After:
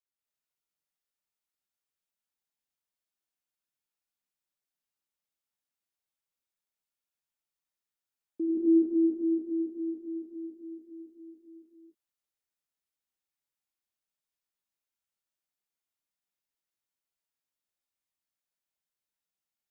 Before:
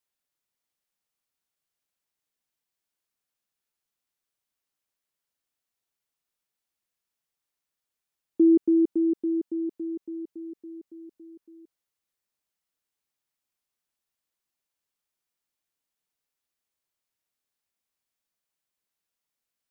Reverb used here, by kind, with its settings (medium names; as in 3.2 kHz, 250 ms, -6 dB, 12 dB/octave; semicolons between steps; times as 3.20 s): gated-style reverb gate 300 ms rising, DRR -6.5 dB; trim -13.5 dB